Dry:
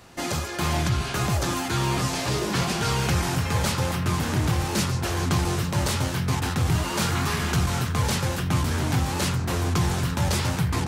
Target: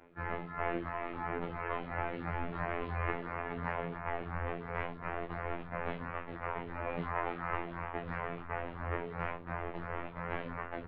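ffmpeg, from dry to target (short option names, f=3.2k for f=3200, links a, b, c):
-filter_complex "[0:a]highpass=f=310:t=q:w=0.5412,highpass=f=310:t=q:w=1.307,lowpass=f=2.5k:t=q:w=0.5176,lowpass=f=2.5k:t=q:w=0.7071,lowpass=f=2.5k:t=q:w=1.932,afreqshift=-380,afftfilt=real='hypot(re,im)*cos(PI*b)':imag='0':win_size=2048:overlap=0.75,asplit=2[a][b];[b]adelay=11.2,afreqshift=-2.9[c];[a][c]amix=inputs=2:normalize=1"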